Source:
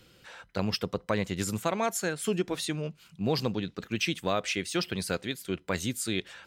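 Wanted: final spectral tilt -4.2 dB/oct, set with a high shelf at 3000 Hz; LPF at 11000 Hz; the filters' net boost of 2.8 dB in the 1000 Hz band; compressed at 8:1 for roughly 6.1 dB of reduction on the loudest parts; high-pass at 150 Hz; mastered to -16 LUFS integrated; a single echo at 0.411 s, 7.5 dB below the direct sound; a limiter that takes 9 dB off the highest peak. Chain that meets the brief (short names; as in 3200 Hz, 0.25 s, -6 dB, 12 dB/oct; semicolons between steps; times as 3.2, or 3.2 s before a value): HPF 150 Hz; LPF 11000 Hz; bell 1000 Hz +4.5 dB; high shelf 3000 Hz -6 dB; compressor 8:1, threshold -28 dBFS; limiter -24 dBFS; echo 0.411 s -7.5 dB; gain +20.5 dB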